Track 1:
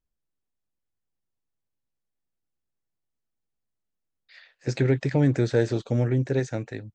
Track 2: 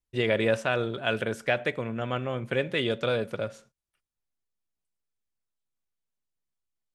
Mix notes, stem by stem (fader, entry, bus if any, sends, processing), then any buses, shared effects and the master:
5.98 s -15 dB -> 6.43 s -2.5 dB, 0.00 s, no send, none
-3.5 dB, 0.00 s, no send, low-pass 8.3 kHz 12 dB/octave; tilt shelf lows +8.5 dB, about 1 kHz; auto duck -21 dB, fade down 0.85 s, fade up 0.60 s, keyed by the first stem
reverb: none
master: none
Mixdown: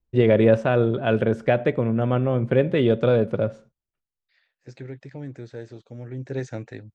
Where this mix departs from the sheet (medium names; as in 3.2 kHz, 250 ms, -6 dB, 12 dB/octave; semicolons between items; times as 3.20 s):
stem 2 -3.5 dB -> +3.5 dB; master: extra treble shelf 9.5 kHz -9 dB